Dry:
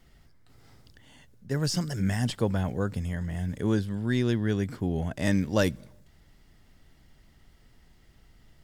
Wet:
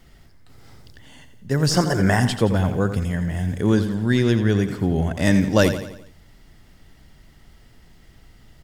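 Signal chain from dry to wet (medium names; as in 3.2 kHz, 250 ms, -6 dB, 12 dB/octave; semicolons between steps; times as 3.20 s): 1.71–2.20 s: high-order bell 740 Hz +10.5 dB 2.7 oct; feedback delay 86 ms, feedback 48%, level -10.5 dB; trim +7.5 dB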